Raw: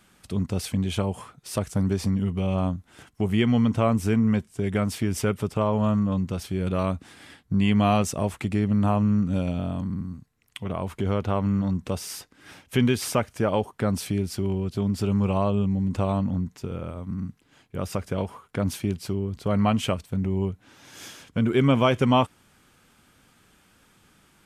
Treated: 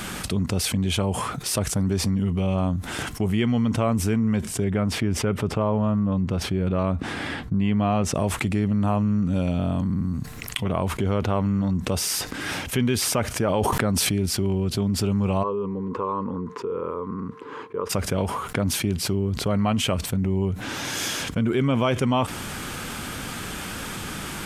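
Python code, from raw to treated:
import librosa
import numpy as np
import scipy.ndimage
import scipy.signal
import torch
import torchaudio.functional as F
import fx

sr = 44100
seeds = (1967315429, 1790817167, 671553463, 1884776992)

y = fx.lowpass(x, sr, hz=1800.0, slope=6, at=(4.64, 8.15))
y = fx.sustainer(y, sr, db_per_s=24.0, at=(13.44, 14.26))
y = fx.double_bandpass(y, sr, hz=680.0, octaves=1.2, at=(15.42, 17.89), fade=0.02)
y = fx.env_flatten(y, sr, amount_pct=70)
y = y * librosa.db_to_amplitude(-3.5)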